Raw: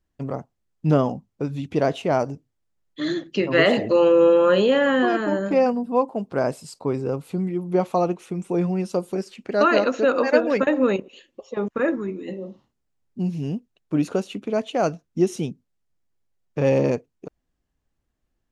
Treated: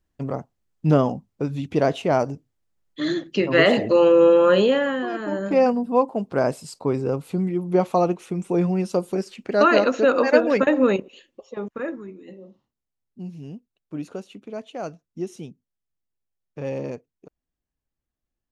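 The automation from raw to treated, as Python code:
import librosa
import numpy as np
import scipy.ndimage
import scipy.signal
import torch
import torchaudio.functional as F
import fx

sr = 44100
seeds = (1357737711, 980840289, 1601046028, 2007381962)

y = fx.gain(x, sr, db=fx.line((4.64, 1.0), (5.05, -8.0), (5.63, 1.5), (10.91, 1.5), (12.14, -10.0)))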